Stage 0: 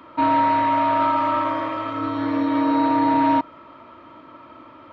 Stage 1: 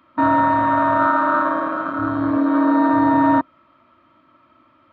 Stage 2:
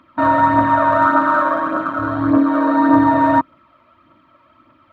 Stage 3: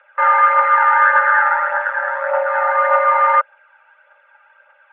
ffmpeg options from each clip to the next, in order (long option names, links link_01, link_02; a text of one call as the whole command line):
ffmpeg -i in.wav -af "afwtdn=0.0794,superequalizer=6b=0.708:7b=0.316:8b=0.708:9b=0.501,volume=7dB" out.wav
ffmpeg -i in.wav -af "aphaser=in_gain=1:out_gain=1:delay=2.1:decay=0.43:speed=1.7:type=triangular,volume=2dB" out.wav
ffmpeg -i in.wav -filter_complex "[0:a]asplit=2[link_01][link_02];[link_02]asoftclip=type=hard:threshold=-9.5dB,volume=-7.5dB[link_03];[link_01][link_03]amix=inputs=2:normalize=0,highpass=frequency=350:width_type=q:width=0.5412,highpass=frequency=350:width_type=q:width=1.307,lowpass=frequency=2600:width_type=q:width=0.5176,lowpass=frequency=2600:width_type=q:width=0.7071,lowpass=frequency=2600:width_type=q:width=1.932,afreqshift=270,volume=-1dB" out.wav